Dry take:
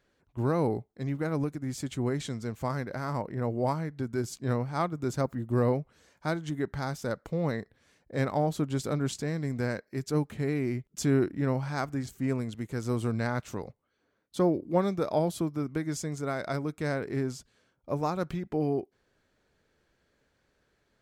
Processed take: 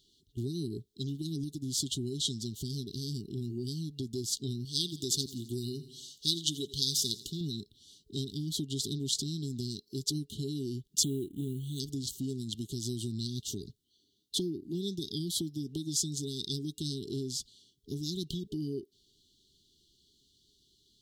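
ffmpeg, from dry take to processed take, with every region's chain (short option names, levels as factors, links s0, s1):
-filter_complex "[0:a]asettb=1/sr,asplit=3[s0][s1][s2];[s0]atrim=end=4.654[s3];[s1]atrim=start=4.65:end=7.41,asetpts=PTS-STARTPTS,afade=t=in:d=0.004:c=qsin,afade=t=out:st=2.756:d=0.004:c=qsin,tiltshelf=f=640:g=-6,aecho=1:1:84|168|252|336:0.126|0.0629|0.0315|0.0157,atrim=end_sample=121716[s4];[s2]atrim=start=7.406[s5];[s3][s4]acrossfade=d=0.004:c1=hsin:c2=qsin[s6];[s6][s5]acrossfade=d=0.004:c1=qsin:c2=hsin,asettb=1/sr,asplit=3[s7][s8][s9];[s7]atrim=end=11.034[s10];[s8]atrim=start=11.03:end=11.8,asetpts=PTS-STARTPTS,afade=t=in:d=0.004:c=qsin,afade=t=out:st=0.766:d=0.004:c=qsin,acrusher=bits=8:mode=log:mix=0:aa=0.000001,asuperstop=centerf=5100:order=4:qfactor=1.2[s11];[s9]atrim=start=11.796[s12];[s10][s11]acrossfade=d=0.004:c1=hsin:c2=qsin[s13];[s13][s12]acrossfade=d=0.004:c1=qsin:c2=hsin,afftfilt=real='re*(1-between(b*sr/4096,430,2800))':imag='im*(1-between(b*sr/4096,430,2800))':win_size=4096:overlap=0.75,acompressor=threshold=0.02:ratio=3,highshelf=f=2800:t=q:w=3:g=9.5"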